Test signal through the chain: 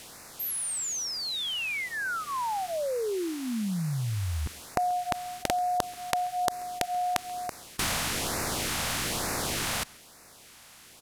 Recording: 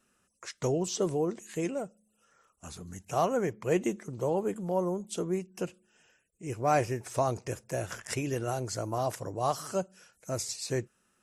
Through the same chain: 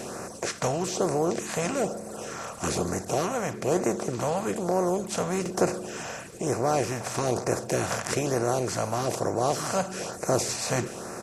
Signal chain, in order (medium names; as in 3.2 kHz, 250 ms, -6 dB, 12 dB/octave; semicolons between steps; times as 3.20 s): spectral levelling over time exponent 0.4; gain riding within 4 dB 0.5 s; LFO notch sine 1.1 Hz 340–3300 Hz; echo from a far wall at 23 m, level -25 dB; buffer glitch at 5.41 s, samples 2048, times 1